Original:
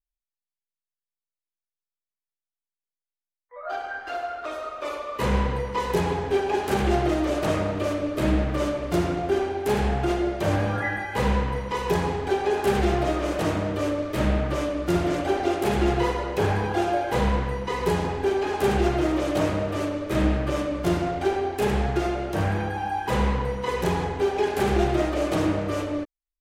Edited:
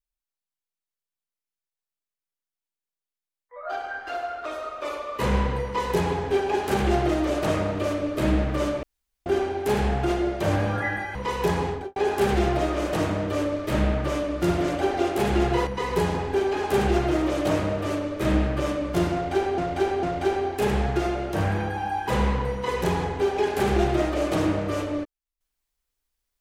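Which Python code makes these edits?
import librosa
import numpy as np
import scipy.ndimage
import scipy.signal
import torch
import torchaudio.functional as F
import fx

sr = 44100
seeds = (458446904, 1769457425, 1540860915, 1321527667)

y = fx.studio_fade_out(x, sr, start_s=12.15, length_s=0.27)
y = fx.edit(y, sr, fx.room_tone_fill(start_s=8.83, length_s=0.43),
    fx.cut(start_s=11.15, length_s=0.46),
    fx.cut(start_s=16.13, length_s=1.44),
    fx.repeat(start_s=21.03, length_s=0.45, count=3), tone=tone)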